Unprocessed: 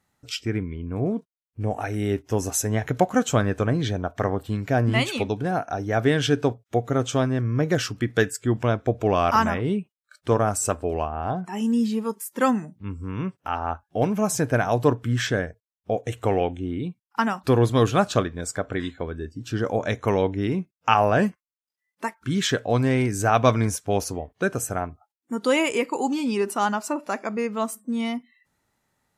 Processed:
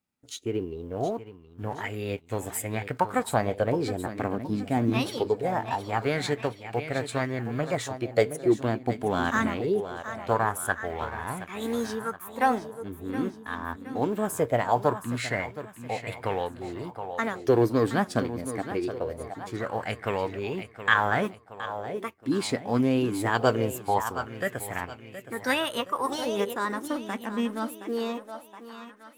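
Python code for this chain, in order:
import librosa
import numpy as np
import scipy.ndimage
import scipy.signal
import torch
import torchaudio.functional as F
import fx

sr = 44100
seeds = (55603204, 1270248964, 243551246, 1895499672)

y = fx.law_mismatch(x, sr, coded='A')
y = fx.formant_shift(y, sr, semitones=4)
y = fx.echo_feedback(y, sr, ms=720, feedback_pct=46, wet_db=-11.5)
y = fx.bell_lfo(y, sr, hz=0.22, low_hz=240.0, high_hz=2400.0, db=10)
y = y * librosa.db_to_amplitude(-7.0)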